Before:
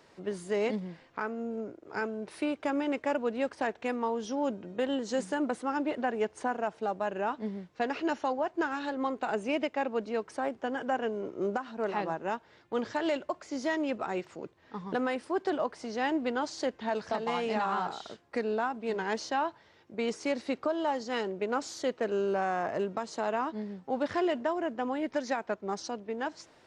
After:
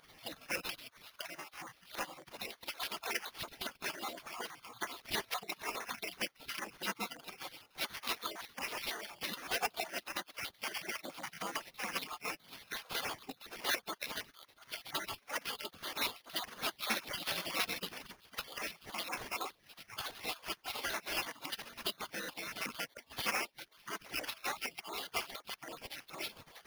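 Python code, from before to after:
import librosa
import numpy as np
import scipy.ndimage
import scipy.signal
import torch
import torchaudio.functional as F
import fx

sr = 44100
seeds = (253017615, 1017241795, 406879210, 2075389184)

y = fx.spec_dropout(x, sr, seeds[0], share_pct=54)
y = fx.recorder_agc(y, sr, target_db=-28.0, rise_db_per_s=30.0, max_gain_db=30)
y = scipy.signal.sosfilt(scipy.signal.butter(2, 470.0, 'highpass', fs=sr, output='sos'), y)
y = fx.peak_eq(y, sr, hz=1900.0, db=9.5, octaves=0.32)
y = fx.spec_gate(y, sr, threshold_db=-25, keep='weak')
y = fx.peak_eq(y, sr, hz=740.0, db=14.5, octaves=0.54, at=(9.48, 9.91))
y = fx.sample_hold(y, sr, seeds[1], rate_hz=7800.0, jitter_pct=0)
y = fx.band_squash(y, sr, depth_pct=40, at=(11.05, 12.89))
y = F.gain(torch.from_numpy(y), 16.5).numpy()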